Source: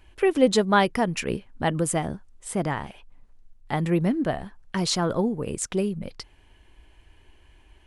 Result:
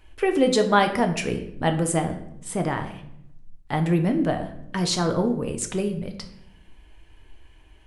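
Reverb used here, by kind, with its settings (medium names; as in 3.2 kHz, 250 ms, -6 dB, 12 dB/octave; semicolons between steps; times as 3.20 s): simulated room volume 180 m³, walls mixed, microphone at 0.52 m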